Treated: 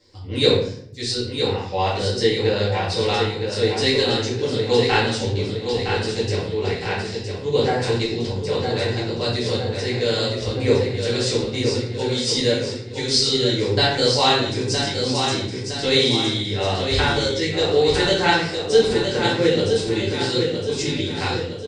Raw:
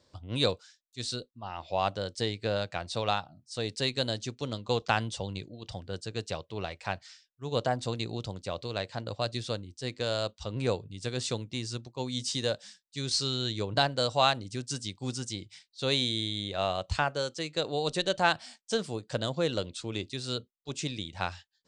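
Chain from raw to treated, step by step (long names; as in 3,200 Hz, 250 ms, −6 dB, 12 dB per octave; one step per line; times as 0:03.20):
thirty-one-band graphic EQ 400 Hz +9 dB, 630 Hz −7 dB, 1,250 Hz −6 dB, 2,000 Hz +7 dB, 5,000 Hz +7 dB
repeating echo 963 ms, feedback 48%, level −6 dB
rectangular room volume 110 cubic metres, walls mixed, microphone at 2.1 metres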